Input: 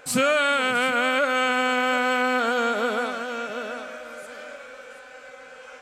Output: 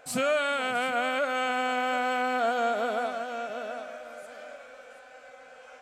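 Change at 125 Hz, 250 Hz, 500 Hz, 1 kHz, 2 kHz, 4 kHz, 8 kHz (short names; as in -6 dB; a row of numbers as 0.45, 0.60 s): n/a, -7.5 dB, -4.0 dB, -3.5 dB, -7.5 dB, -7.5 dB, -7.5 dB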